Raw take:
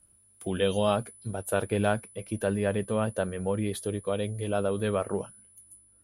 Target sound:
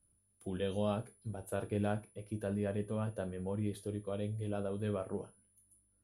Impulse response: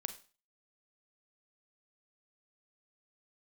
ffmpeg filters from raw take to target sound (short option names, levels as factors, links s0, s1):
-filter_complex "[0:a]lowshelf=f=480:g=8[s0];[1:a]atrim=start_sample=2205,asetrate=74970,aresample=44100[s1];[s0][s1]afir=irnorm=-1:irlink=0,volume=0.398"